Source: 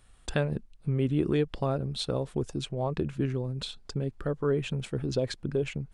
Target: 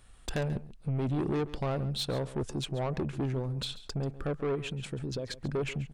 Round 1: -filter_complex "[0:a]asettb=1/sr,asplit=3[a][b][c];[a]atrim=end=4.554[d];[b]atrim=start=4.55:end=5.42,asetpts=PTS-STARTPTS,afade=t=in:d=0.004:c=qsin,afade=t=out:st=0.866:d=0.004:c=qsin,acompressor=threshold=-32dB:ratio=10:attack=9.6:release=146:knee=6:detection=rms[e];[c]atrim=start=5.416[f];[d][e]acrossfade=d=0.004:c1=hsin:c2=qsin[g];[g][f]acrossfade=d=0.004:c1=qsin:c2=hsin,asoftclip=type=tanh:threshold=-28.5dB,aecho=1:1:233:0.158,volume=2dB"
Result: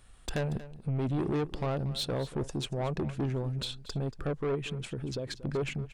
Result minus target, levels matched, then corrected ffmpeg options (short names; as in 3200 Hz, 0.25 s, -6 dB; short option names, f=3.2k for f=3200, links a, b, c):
echo 96 ms late
-filter_complex "[0:a]asettb=1/sr,asplit=3[a][b][c];[a]atrim=end=4.554[d];[b]atrim=start=4.55:end=5.42,asetpts=PTS-STARTPTS,afade=t=in:d=0.004:c=qsin,afade=t=out:st=0.866:d=0.004:c=qsin,acompressor=threshold=-32dB:ratio=10:attack=9.6:release=146:knee=6:detection=rms[e];[c]atrim=start=5.416[f];[d][e]acrossfade=d=0.004:c1=hsin:c2=qsin[g];[g][f]acrossfade=d=0.004:c1=qsin:c2=hsin,asoftclip=type=tanh:threshold=-28.5dB,aecho=1:1:137:0.158,volume=2dB"